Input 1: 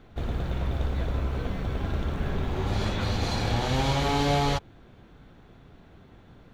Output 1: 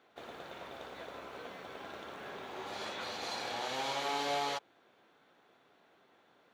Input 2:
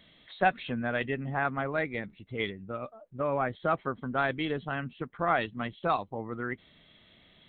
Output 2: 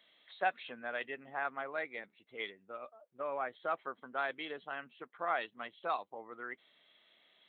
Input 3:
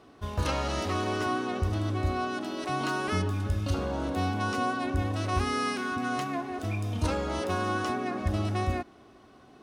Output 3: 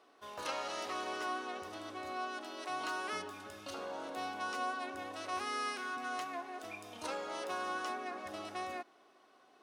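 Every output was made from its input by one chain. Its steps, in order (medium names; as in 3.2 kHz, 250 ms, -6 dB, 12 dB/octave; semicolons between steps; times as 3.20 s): high-pass 500 Hz 12 dB/octave; trim -6.5 dB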